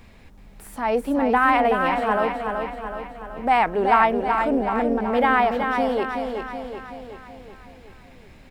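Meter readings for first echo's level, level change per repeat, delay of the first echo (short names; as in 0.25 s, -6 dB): -5.5 dB, -5.0 dB, 0.376 s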